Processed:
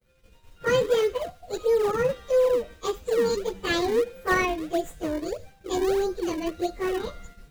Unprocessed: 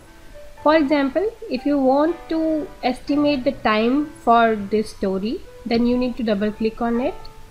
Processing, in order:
phase-vocoder pitch shift without resampling +8 semitones
parametric band 910 Hz −15 dB 0.48 octaves
in parallel at −8 dB: sample-and-hold swept by an LFO 38×, swing 160% 1.6 Hz
on the sum: hollow resonant body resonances 500/3,800 Hz, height 7 dB
downward expander −37 dBFS
level −4.5 dB

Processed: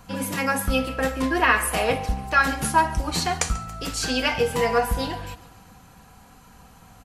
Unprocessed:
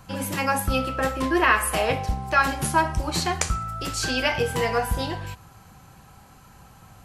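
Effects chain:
comb filter 4.2 ms, depth 42%
repeating echo 140 ms, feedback 56%, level −19.5 dB

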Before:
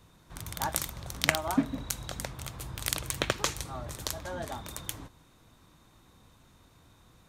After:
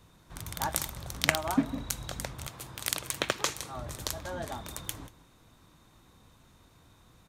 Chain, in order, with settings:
0:02.47–0:03.77: high-pass filter 230 Hz 6 dB per octave
slap from a distant wall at 32 metres, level −19 dB

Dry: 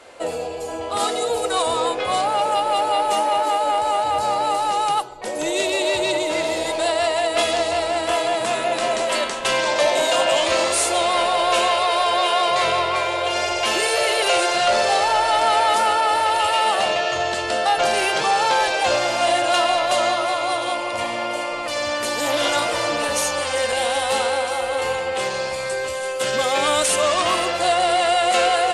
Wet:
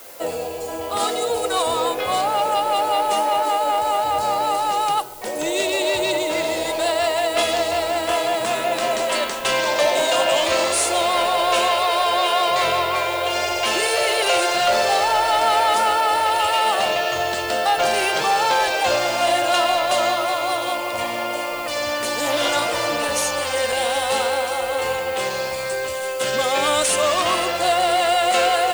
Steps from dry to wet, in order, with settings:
background noise blue −42 dBFS

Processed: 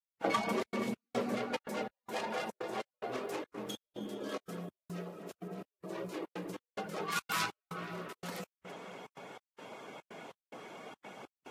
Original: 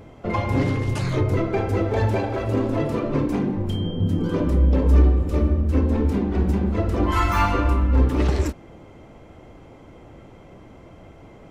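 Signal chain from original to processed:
stylus tracing distortion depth 0.32 ms
downward compressor 6 to 1, threshold −32 dBFS, peak gain reduction 19.5 dB
frequency shifter +110 Hz
reverb reduction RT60 0.61 s
floating-point word with a short mantissa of 6 bits
high-pass filter 600 Hz 6 dB per octave, from 0:01.35 1,400 Hz
feedback echo with a low-pass in the loop 237 ms, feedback 66%, low-pass 3,300 Hz, level −9 dB
gate pattern "..xxxx.xx" 144 BPM −60 dB
level +7 dB
Ogg Vorbis 48 kbit/s 44,100 Hz

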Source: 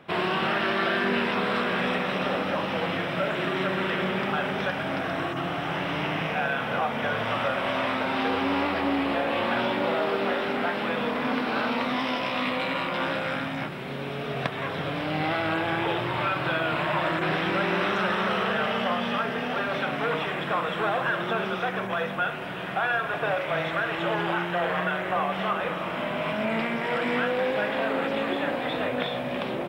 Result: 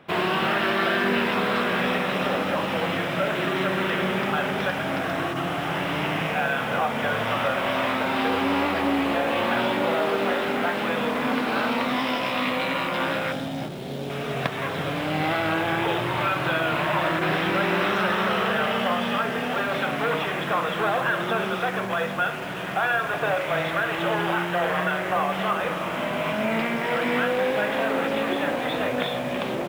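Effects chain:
0:13.32–0:14.10: flat-topped bell 1,600 Hz −10 dB
in parallel at −10 dB: bit reduction 6 bits

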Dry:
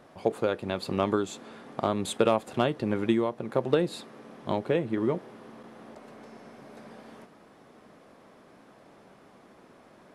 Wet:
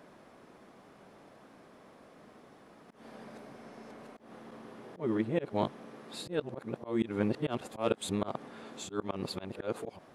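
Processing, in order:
played backwards from end to start
volume swells 175 ms
level −1.5 dB

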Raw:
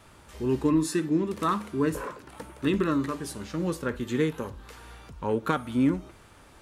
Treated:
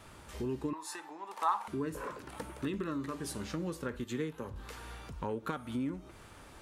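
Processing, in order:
downward compressor 4 to 1, threshold −35 dBFS, peak gain reduction 14 dB
0:00.73–0:01.68: high-pass with resonance 840 Hz, resonance Q 10
0:04.04–0:04.56: multiband upward and downward expander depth 70%

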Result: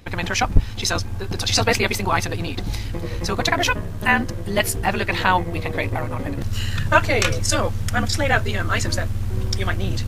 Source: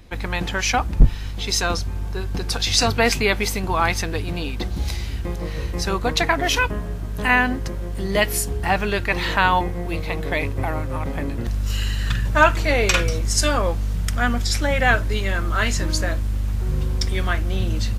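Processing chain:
time stretch by overlap-add 0.56×, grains 28 ms
level +1.5 dB

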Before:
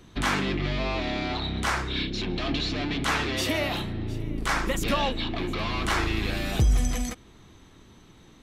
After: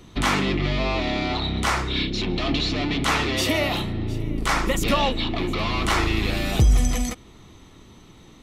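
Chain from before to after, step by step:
notch filter 1,600 Hz, Q 8.4
level +4.5 dB

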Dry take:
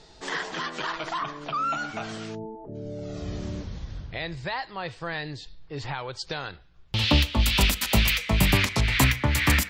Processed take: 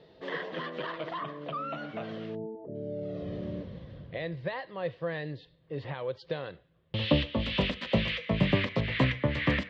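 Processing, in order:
loudspeaker in its box 120–3,100 Hz, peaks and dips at 160 Hz +4 dB, 530 Hz +10 dB, 840 Hz −9 dB, 1,400 Hz −9 dB, 2,400 Hz −7 dB
level −2.5 dB

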